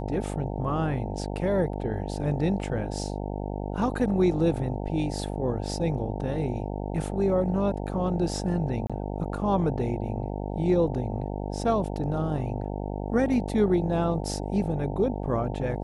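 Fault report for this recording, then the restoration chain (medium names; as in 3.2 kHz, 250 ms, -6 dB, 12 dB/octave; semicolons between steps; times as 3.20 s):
buzz 50 Hz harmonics 18 -32 dBFS
8.87–8.90 s: dropout 26 ms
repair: de-hum 50 Hz, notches 18; interpolate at 8.87 s, 26 ms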